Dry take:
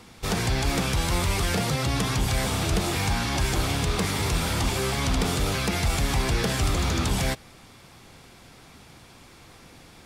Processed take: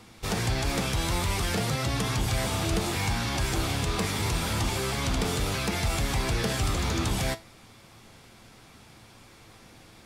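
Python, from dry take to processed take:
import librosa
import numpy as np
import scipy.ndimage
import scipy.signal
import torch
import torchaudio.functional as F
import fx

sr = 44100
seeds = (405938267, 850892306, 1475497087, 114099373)

y = fx.comb_fb(x, sr, f0_hz=110.0, decay_s=0.24, harmonics='all', damping=0.0, mix_pct=60)
y = y * 10.0 ** (2.5 / 20.0)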